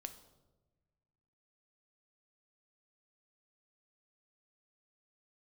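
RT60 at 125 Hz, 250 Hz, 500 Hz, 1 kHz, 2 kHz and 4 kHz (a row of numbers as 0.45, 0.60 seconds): 2.1, 1.7, 1.4, 1.0, 0.70, 0.70 seconds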